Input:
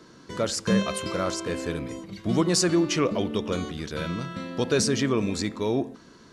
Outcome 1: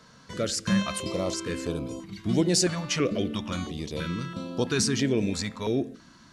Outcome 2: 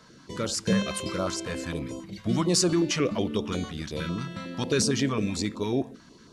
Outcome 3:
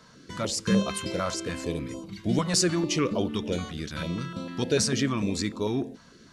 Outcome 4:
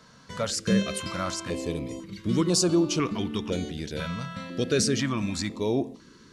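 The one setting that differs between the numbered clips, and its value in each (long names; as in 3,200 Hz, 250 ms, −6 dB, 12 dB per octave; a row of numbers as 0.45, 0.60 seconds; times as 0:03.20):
notch on a step sequencer, speed: 3, 11, 6.7, 2 Hertz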